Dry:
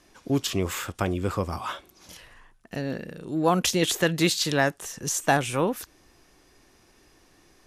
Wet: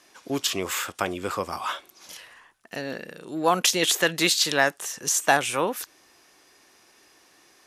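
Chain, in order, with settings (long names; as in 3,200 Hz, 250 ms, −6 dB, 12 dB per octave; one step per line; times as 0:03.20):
high-pass filter 710 Hz 6 dB per octave
level +4.5 dB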